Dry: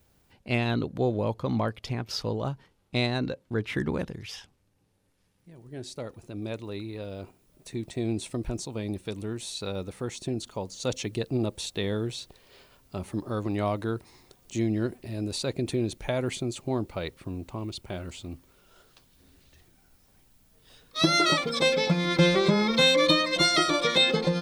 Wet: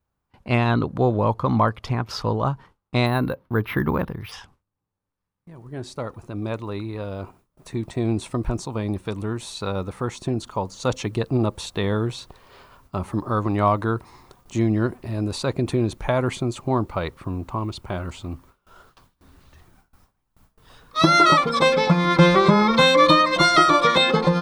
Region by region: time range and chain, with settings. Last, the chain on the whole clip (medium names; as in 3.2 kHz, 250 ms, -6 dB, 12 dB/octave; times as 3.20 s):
3.06–4.32 s: low-pass 4.5 kHz + careless resampling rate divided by 3×, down filtered, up hold
whole clip: bass shelf 280 Hz +9 dB; gate with hold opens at -44 dBFS; peaking EQ 1.1 kHz +14.5 dB 1.2 oct